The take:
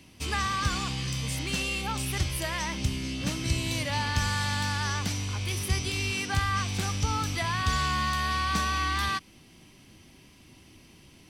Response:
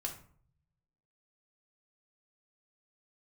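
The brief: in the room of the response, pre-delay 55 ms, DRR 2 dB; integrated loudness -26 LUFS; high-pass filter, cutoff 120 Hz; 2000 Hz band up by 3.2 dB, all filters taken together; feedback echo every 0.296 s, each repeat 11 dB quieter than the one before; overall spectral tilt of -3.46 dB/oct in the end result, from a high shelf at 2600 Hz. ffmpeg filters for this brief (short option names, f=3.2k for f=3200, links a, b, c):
-filter_complex "[0:a]highpass=120,equalizer=f=2k:t=o:g=6,highshelf=f=2.6k:g=-4.5,aecho=1:1:296|592|888:0.282|0.0789|0.0221,asplit=2[a][b];[1:a]atrim=start_sample=2205,adelay=55[c];[b][c]afir=irnorm=-1:irlink=0,volume=-2dB[d];[a][d]amix=inputs=2:normalize=0,volume=0.5dB"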